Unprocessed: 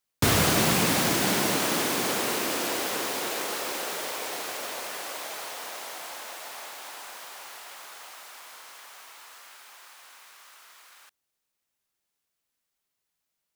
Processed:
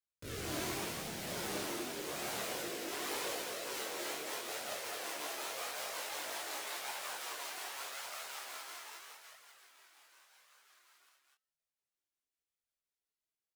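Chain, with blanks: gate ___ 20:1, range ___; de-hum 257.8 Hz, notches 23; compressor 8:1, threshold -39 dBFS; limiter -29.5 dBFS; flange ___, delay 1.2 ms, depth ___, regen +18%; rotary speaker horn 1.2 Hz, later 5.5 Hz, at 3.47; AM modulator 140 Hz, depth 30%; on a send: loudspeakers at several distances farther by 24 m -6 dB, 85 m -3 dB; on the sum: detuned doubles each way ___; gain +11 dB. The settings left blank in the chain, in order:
-46 dBFS, -15 dB, 0.87 Hz, 2 ms, 11 cents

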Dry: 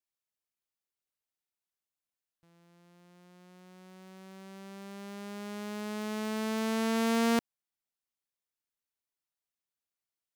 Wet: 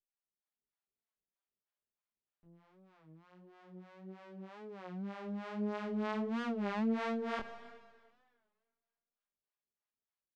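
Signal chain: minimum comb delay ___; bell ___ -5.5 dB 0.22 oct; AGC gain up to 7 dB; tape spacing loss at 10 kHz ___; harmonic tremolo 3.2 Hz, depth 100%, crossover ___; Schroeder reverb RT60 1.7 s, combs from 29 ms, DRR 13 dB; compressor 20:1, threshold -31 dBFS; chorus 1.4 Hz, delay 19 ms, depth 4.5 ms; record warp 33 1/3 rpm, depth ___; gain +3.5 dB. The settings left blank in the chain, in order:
4.9 ms, 180 Hz, 33 dB, 540 Hz, 160 cents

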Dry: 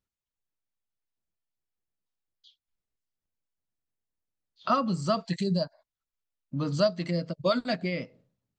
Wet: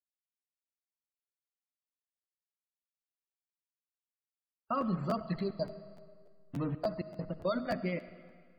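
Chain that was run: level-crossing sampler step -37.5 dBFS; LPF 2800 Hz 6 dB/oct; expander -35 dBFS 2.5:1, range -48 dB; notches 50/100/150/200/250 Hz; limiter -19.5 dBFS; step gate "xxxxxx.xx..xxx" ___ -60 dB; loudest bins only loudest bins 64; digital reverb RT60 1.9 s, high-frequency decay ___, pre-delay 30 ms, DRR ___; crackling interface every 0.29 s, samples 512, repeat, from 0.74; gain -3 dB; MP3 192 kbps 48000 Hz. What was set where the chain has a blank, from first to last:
169 bpm, 0.85×, 13 dB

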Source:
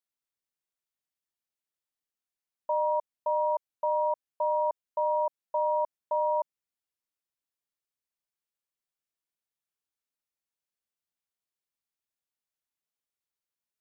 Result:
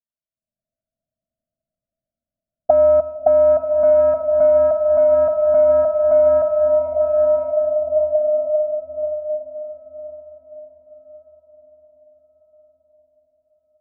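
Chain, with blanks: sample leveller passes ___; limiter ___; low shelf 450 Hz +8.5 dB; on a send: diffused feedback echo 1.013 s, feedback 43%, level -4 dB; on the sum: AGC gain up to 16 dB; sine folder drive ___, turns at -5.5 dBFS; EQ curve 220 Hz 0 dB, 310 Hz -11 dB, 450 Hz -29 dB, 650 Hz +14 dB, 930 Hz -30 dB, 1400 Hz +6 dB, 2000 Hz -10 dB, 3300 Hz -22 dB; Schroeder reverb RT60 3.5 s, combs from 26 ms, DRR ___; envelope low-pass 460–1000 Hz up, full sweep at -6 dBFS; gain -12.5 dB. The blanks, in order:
2, -28 dBFS, 4 dB, 9 dB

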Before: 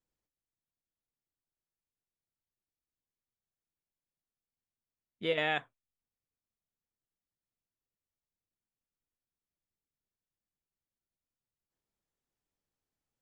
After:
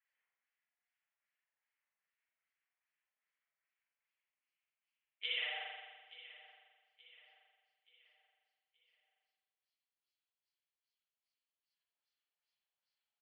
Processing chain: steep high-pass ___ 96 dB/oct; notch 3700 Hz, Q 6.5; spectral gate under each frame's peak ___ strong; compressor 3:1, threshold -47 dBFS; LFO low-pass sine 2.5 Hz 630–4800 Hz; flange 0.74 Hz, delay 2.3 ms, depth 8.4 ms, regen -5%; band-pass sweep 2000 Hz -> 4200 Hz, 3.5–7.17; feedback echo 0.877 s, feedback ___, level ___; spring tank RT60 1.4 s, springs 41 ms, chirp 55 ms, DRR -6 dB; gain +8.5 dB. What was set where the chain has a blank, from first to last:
420 Hz, -40 dB, 42%, -17 dB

